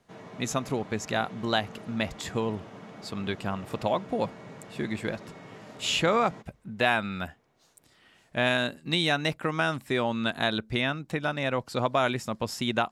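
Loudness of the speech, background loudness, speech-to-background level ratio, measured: -29.0 LUFS, -46.0 LUFS, 17.0 dB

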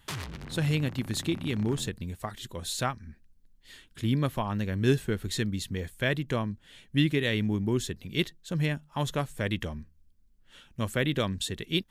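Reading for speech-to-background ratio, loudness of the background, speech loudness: 12.0 dB, -42.5 LUFS, -30.5 LUFS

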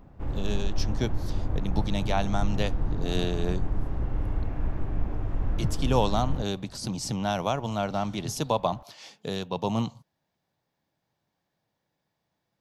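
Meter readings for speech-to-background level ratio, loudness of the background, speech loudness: 2.5 dB, -33.0 LUFS, -30.5 LUFS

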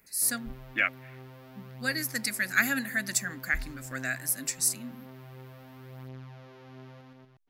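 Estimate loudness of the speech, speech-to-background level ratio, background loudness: -29.5 LUFS, 18.5 dB, -48.0 LUFS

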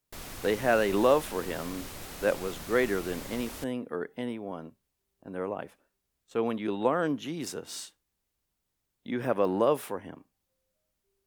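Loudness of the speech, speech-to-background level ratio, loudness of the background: -30.5 LUFS, 11.0 dB, -41.5 LUFS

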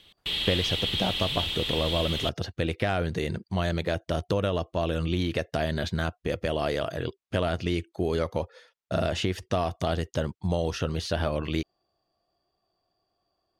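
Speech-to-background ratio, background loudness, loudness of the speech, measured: -1.0 dB, -28.5 LUFS, -29.5 LUFS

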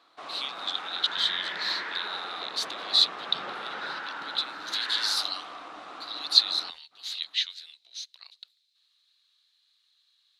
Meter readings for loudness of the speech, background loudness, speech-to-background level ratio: -27.5 LUFS, -37.0 LUFS, 9.5 dB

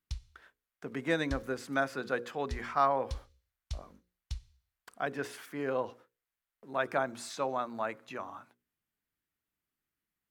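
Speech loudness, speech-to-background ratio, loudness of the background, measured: -34.5 LUFS, 11.0 dB, -45.5 LUFS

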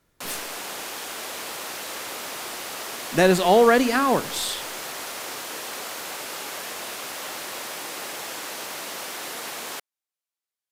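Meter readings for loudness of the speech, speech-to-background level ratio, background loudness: -20.5 LUFS, 11.5 dB, -32.0 LUFS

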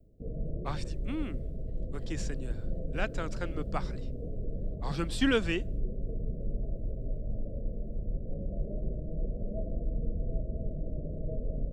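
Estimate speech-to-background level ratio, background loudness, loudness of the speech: 4.0 dB, -39.0 LUFS, -35.0 LUFS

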